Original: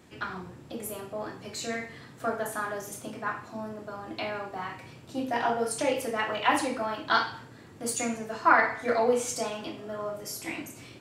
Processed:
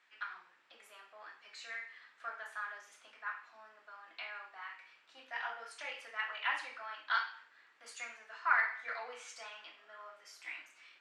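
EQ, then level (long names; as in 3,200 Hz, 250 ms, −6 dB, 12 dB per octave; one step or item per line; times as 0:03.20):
four-pole ladder band-pass 2,100 Hz, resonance 25%
+4.0 dB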